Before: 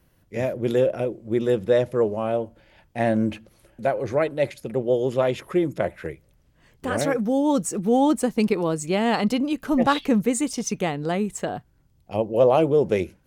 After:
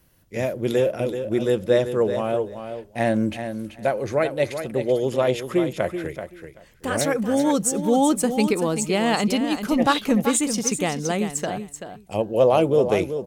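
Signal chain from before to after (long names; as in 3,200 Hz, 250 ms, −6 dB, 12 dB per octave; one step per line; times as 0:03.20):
high-shelf EQ 3,300 Hz +7.5 dB
repeating echo 383 ms, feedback 16%, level −9 dB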